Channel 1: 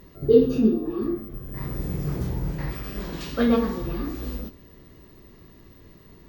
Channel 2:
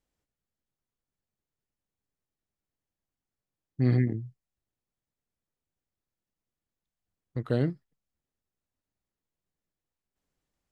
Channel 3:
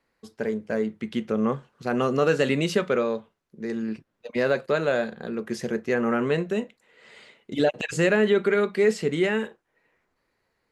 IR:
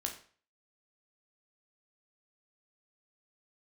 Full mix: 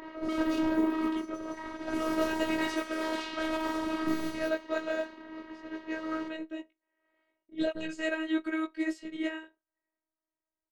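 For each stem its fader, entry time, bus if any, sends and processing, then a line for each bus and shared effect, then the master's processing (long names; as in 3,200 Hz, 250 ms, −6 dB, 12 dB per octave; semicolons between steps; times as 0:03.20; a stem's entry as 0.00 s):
−9.0 dB, 0.00 s, send −6 dB, low-shelf EQ 270 Hz −11.5 dB; mid-hump overdrive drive 42 dB, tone 1,600 Hz, clips at −7.5 dBFS; automatic ducking −8 dB, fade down 0.40 s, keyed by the third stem
−4.0 dB, 0.25 s, no send, no processing
−2.0 dB, 0.00 s, send −22.5 dB, low-shelf EQ 120 Hz −9 dB; chorus effect 0.47 Hz, delay 17 ms, depth 4.4 ms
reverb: on, RT60 0.45 s, pre-delay 12 ms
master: low-pass that shuts in the quiet parts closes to 1,200 Hz, open at −21.5 dBFS; phases set to zero 317 Hz; expander for the loud parts 1.5 to 1, over −47 dBFS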